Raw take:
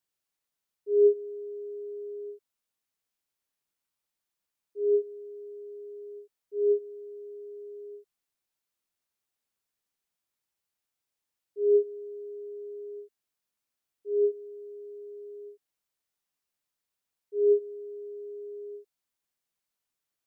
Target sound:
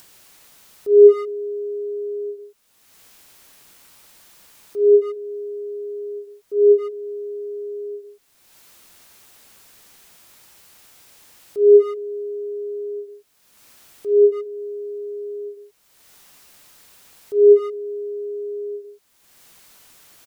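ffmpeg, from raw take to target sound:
-filter_complex "[0:a]asplit=2[s0][s1];[s1]acompressor=mode=upward:threshold=0.02:ratio=2.5,volume=1.26[s2];[s0][s2]amix=inputs=2:normalize=0,asplit=2[s3][s4];[s4]adelay=140,highpass=300,lowpass=3400,asoftclip=type=hard:threshold=0.168,volume=0.282[s5];[s3][s5]amix=inputs=2:normalize=0,volume=1.78"

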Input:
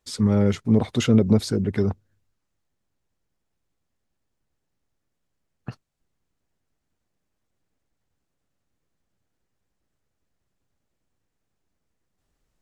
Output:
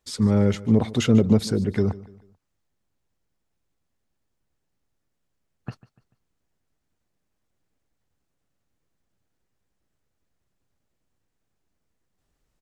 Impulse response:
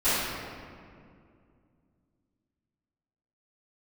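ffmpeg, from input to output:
-af "aecho=1:1:146|292|438:0.106|0.0424|0.0169"

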